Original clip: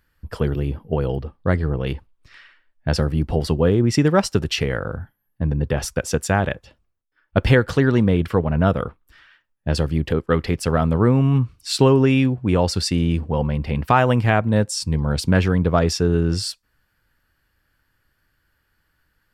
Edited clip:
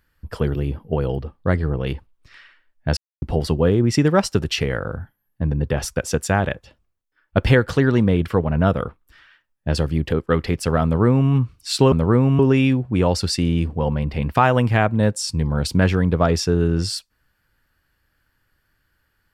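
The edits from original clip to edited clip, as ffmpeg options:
ffmpeg -i in.wav -filter_complex "[0:a]asplit=5[link_01][link_02][link_03][link_04][link_05];[link_01]atrim=end=2.97,asetpts=PTS-STARTPTS,afade=type=out:start_time=2.966:duration=0.004:curve=hsin[link_06];[link_02]atrim=start=2.97:end=3.22,asetpts=PTS-STARTPTS,volume=0[link_07];[link_03]atrim=start=3.22:end=11.922,asetpts=PTS-STARTPTS,afade=type=in:duration=0.004:curve=hsin[link_08];[link_04]atrim=start=10.838:end=11.312[link_09];[link_05]atrim=start=11.918[link_10];[link_06][link_07][link_08]concat=n=3:v=0:a=1[link_11];[link_11][link_09]acrossfade=duration=0.004:curve1=hsin:curve2=hsin[link_12];[link_12][link_10]acrossfade=duration=0.004:curve1=hsin:curve2=hsin" out.wav

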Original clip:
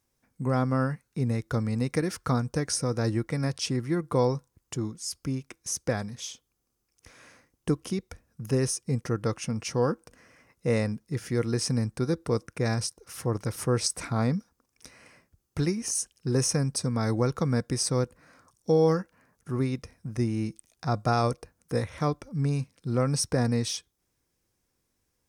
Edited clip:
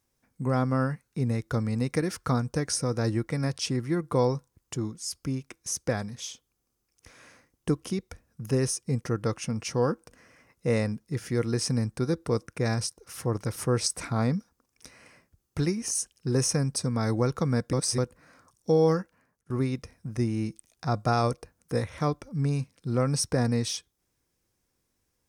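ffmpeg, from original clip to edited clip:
ffmpeg -i in.wav -filter_complex "[0:a]asplit=4[link_01][link_02][link_03][link_04];[link_01]atrim=end=17.732[link_05];[link_02]atrim=start=17.728:end=17.982,asetpts=PTS-STARTPTS,areverse[link_06];[link_03]atrim=start=17.978:end=19.5,asetpts=PTS-STARTPTS,afade=type=out:start_time=1.002:duration=0.52:silence=0.1[link_07];[link_04]atrim=start=19.5,asetpts=PTS-STARTPTS,afade=type=in:duration=0.004:curve=hsin:silence=0.1[link_08];[link_05][link_06]acrossfade=duration=0.004:curve1=hsin:curve2=hsin[link_09];[link_07][link_08]concat=n=2:v=0:a=1[link_10];[link_09][link_10]acrossfade=duration=0.004:curve1=hsin:curve2=hsin" out.wav

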